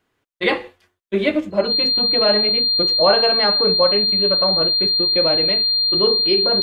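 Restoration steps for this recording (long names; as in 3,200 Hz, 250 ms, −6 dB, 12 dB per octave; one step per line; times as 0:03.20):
notch filter 4,200 Hz, Q 30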